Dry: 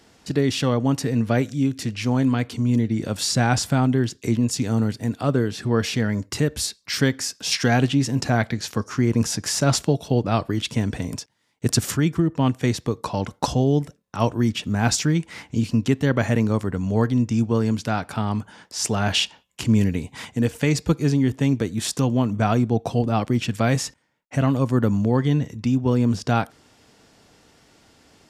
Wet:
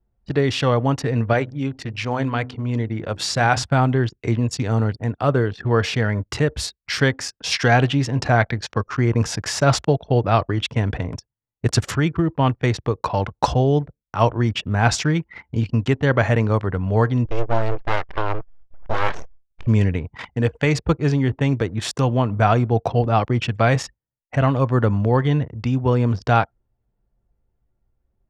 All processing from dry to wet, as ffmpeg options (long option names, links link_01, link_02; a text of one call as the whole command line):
ffmpeg -i in.wav -filter_complex "[0:a]asettb=1/sr,asplit=3[link_01][link_02][link_03];[link_01]atrim=end=1.334[link_04];[link_02]atrim=start=1.33:end=3.63,asetpts=PTS-STARTPTS,afade=type=in:duration=0.004:curve=qsin,afade=type=out:start_time=2.296:duration=0.004:curve=qsin,lowshelf=frequency=300:gain=-4.5,bandreject=frequency=63.05:width_type=h:width=4,bandreject=frequency=126.1:width_type=h:width=4,bandreject=frequency=189.15:width_type=h:width=4,bandreject=frequency=252.2:width_type=h:width=4,bandreject=frequency=315.25:width_type=h:width=4,bandreject=frequency=378.3:width_type=h:width=4[link_05];[link_03]atrim=start=3.626[link_06];[link_04][link_05]acrossfade=duration=0.004:curve1=hsin:curve2=qsin[link_07];[link_07][link_06]acrossfade=duration=0.004:curve1=qsin:curve2=hsin,asettb=1/sr,asplit=3[link_08][link_09][link_10];[link_08]atrim=end=17.254[link_11];[link_09]atrim=start=17.25:end=19.67,asetpts=PTS-STARTPTS,afade=type=in:duration=0.004:curve=qsin,afade=type=out:start_time=2.416:duration=0.004:curve=qsin,highpass=frequency=150:poles=1,deesser=0.75,aeval=exprs='abs(val(0))':channel_layout=same[link_12];[link_10]atrim=start=19.666[link_13];[link_11][link_12]acrossfade=duration=0.004:curve1=hsin:curve2=qsin[link_14];[link_14][link_13]acrossfade=duration=0.004:curve1=qsin:curve2=hsin,aemphasis=mode=reproduction:type=75fm,anlmdn=2.51,equalizer=frequency=230:width=0.91:gain=-11,volume=7dB" out.wav